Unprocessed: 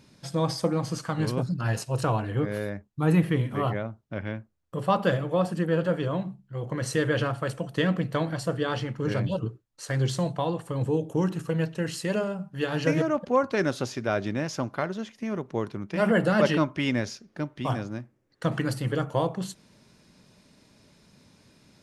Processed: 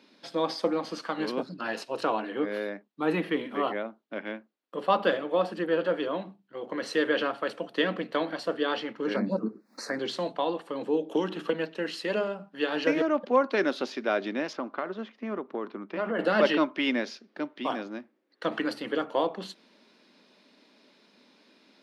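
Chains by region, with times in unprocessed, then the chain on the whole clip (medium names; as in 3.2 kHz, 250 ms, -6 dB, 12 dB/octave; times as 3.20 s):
9.16–9.99 s: peaking EQ 210 Hz +14 dB 0.51 oct + upward compressor, threshold -23 dBFS + Butterworth band-stop 3.1 kHz, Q 1.3
11.11–11.53 s: peaking EQ 3.3 kHz +8.5 dB 0.35 oct + three bands compressed up and down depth 100%
14.53–16.19 s: low-pass 1.7 kHz 6 dB/octave + peaking EQ 1.2 kHz +6 dB 0.34 oct + compression 4:1, threshold -25 dBFS
whole clip: steep high-pass 230 Hz 36 dB/octave; resonant high shelf 5.5 kHz -11 dB, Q 1.5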